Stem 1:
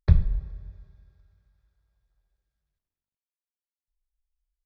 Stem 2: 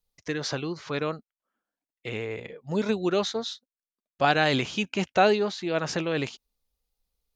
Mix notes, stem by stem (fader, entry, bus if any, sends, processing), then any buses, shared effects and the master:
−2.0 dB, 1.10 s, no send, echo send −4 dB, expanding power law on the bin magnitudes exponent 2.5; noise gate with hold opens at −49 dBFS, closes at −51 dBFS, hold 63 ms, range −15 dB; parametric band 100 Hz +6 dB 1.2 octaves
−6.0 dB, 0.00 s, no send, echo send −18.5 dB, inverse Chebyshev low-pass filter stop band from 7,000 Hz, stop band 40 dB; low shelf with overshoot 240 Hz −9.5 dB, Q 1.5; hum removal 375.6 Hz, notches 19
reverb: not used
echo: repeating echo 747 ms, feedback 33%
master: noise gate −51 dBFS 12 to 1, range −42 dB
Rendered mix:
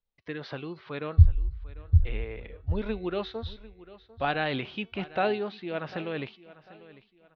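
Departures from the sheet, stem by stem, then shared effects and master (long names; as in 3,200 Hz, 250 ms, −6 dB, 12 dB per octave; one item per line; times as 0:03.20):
stem 2: missing low shelf with overshoot 240 Hz −9.5 dB, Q 1.5
master: missing noise gate −51 dBFS 12 to 1, range −42 dB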